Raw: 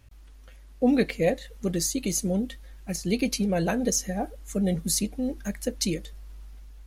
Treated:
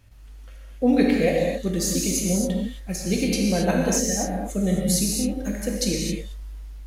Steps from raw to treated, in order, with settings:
reverb whose tail is shaped and stops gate 290 ms flat, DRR −2 dB

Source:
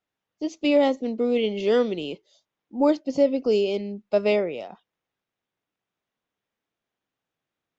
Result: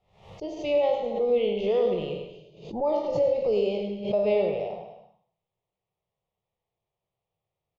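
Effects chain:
peak hold with a decay on every bin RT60 0.52 s
bass and treble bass +7 dB, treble −14 dB
brickwall limiter −14 dBFS, peak gain reduction 5.5 dB
high-frequency loss of the air 65 metres
phaser with its sweep stopped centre 640 Hz, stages 4
on a send: single-tap delay 103 ms −6 dB
on the sum: reverb whose tail is shaped and stops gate 340 ms flat, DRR 10 dB
background raised ahead of every attack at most 100 dB per second

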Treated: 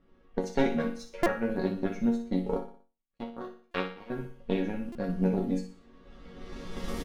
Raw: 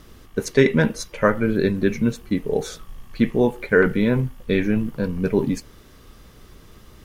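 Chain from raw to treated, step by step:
camcorder AGC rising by 17 dB per second
low-pass that shuts in the quiet parts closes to 2,200 Hz, open at −14 dBFS
drawn EQ curve 110 Hz 0 dB, 550 Hz +4 dB, 1,100 Hz −2 dB
0:02.57–0:04.10: power curve on the samples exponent 3
in parallel at −6 dB: dead-zone distortion −33.5 dBFS
on the sum: harmonic generator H 2 −6 dB, 7 −34 dB, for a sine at 2.5 dBFS
resonators tuned to a chord F#3 major, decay 0.28 s
repeating echo 60 ms, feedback 42%, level −11 dB
buffer that repeats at 0:01.23/0:03.71/0:04.92, samples 128, times 10

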